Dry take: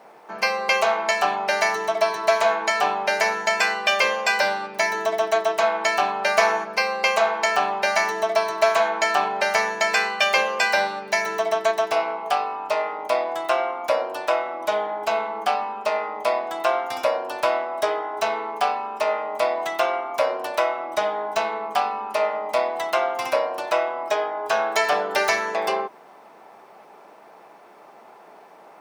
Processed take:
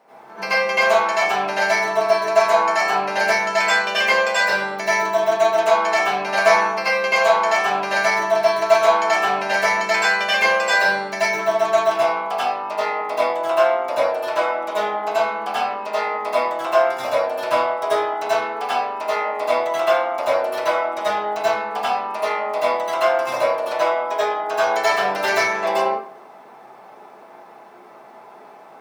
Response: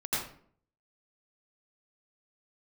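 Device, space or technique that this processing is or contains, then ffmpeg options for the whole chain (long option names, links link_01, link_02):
bathroom: -filter_complex "[1:a]atrim=start_sample=2205[link_01];[0:a][link_01]afir=irnorm=-1:irlink=0,asettb=1/sr,asplit=3[link_02][link_03][link_04];[link_02]atrim=end=2.014[link_05];[link_03]atrim=start=2.01:end=3.1,asetpts=PTS-STARTPTS,afade=type=in:duration=0.004:curve=qsin,afade=type=out:start_time=1.086:duration=0.004:curve=qsin,equalizer=frequency=3400:width_type=o:width=0.3:gain=-6[link_06];[link_04]atrim=start=3.096[link_07];[link_05][link_06]acrossfade=duration=0.004:curve1=hsin:curve2=qsin[link_08];[link_08][link_07]acrossfade=duration=0.004:curve1=qsin:curve2=hsin,volume=-3.5dB"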